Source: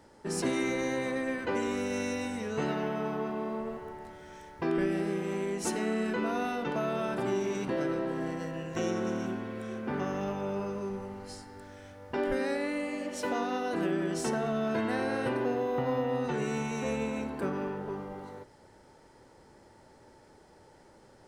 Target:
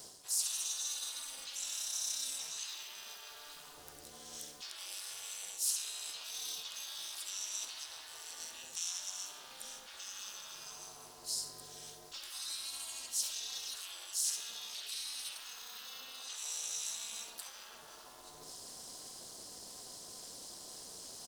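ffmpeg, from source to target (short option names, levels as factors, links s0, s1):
-filter_complex "[0:a]asplit=2[s0][s1];[s1]aecho=0:1:68|136|204:0.251|0.0603|0.0145[s2];[s0][s2]amix=inputs=2:normalize=0,afftfilt=real='re*lt(hypot(re,im),0.0316)':imag='im*lt(hypot(re,im),0.0316)':win_size=1024:overlap=0.75,asplit=3[s3][s4][s5];[s4]asetrate=55563,aresample=44100,atempo=0.793701,volume=0.316[s6];[s5]asetrate=66075,aresample=44100,atempo=0.66742,volume=0.141[s7];[s3][s6][s7]amix=inputs=3:normalize=0,highpass=160,areverse,acompressor=threshold=0.00178:ratio=6,areverse,bandreject=f=60:t=h:w=6,bandreject=f=120:t=h:w=6,bandreject=f=180:t=h:w=6,bandreject=f=240:t=h:w=6,aexciter=amount=14.2:drive=2.3:freq=3200,aeval=exprs='val(0)*sin(2*PI*140*n/s)':c=same,volume=1.5"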